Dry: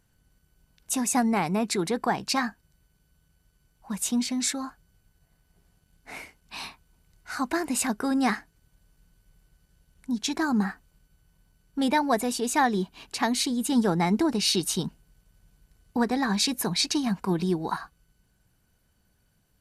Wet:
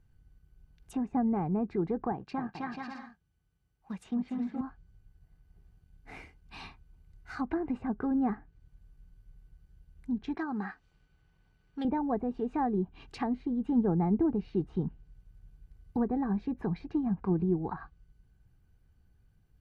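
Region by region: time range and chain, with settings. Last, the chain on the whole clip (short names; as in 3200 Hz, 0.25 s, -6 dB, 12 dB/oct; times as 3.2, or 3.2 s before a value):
2.12–4.61 G.711 law mismatch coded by A + HPF 160 Hz 6 dB/oct + bouncing-ball echo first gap 0.26 s, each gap 0.65×, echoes 5
10.34–11.85 RIAA curve recording + upward compressor, threshold -47 dBFS + low-pass opened by the level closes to 2600 Hz, open at -25 dBFS
whole clip: treble ducked by the level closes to 860 Hz, closed at -23 dBFS; tone controls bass +12 dB, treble -10 dB; comb 2.5 ms, depth 36%; gain -7.5 dB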